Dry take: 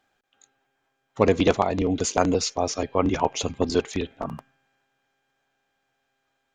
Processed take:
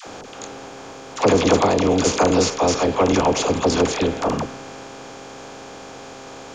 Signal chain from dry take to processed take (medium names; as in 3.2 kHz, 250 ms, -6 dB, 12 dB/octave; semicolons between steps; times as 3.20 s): spectral levelling over time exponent 0.4; phase dispersion lows, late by 67 ms, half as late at 640 Hz